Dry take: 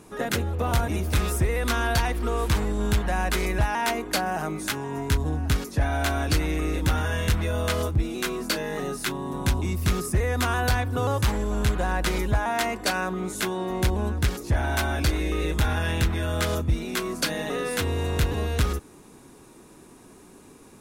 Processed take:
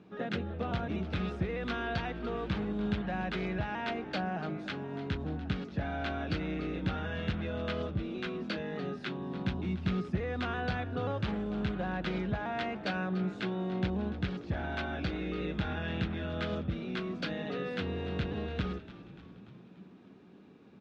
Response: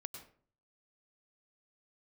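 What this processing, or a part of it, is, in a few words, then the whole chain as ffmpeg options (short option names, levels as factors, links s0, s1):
frequency-shifting delay pedal into a guitar cabinet: -filter_complex "[0:a]asplit=7[s0][s1][s2][s3][s4][s5][s6];[s1]adelay=292,afreqshift=-64,volume=0.178[s7];[s2]adelay=584,afreqshift=-128,volume=0.104[s8];[s3]adelay=876,afreqshift=-192,volume=0.0596[s9];[s4]adelay=1168,afreqshift=-256,volume=0.0347[s10];[s5]adelay=1460,afreqshift=-320,volume=0.0202[s11];[s6]adelay=1752,afreqshift=-384,volume=0.0116[s12];[s0][s7][s8][s9][s10][s11][s12]amix=inputs=7:normalize=0,highpass=100,equalizer=f=190:t=q:w=4:g=9,equalizer=f=1000:t=q:w=4:g=-7,equalizer=f=2000:t=q:w=4:g=-3,lowpass=f=3700:w=0.5412,lowpass=f=3700:w=1.3066,volume=0.398"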